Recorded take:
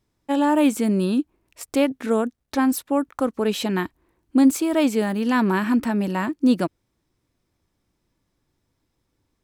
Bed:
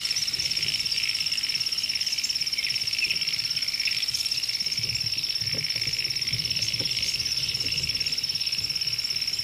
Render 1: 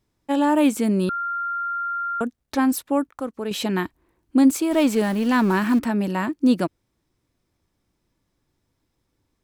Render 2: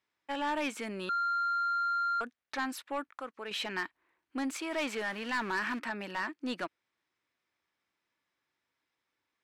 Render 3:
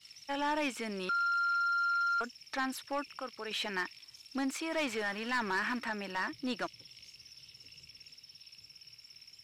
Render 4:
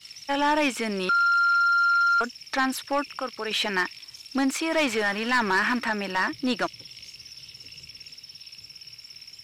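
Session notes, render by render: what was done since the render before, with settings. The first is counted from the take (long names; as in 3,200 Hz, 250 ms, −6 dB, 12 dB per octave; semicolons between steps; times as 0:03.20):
0:01.09–0:02.21: beep over 1,390 Hz −23.5 dBFS; 0:03.07–0:03.51: clip gain −6.5 dB; 0:04.71–0:05.79: converter with a step at zero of −31.5 dBFS
resonant band-pass 2,000 Hz, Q 1.1; soft clipping −26.5 dBFS, distortion −12 dB
mix in bed −27 dB
level +10 dB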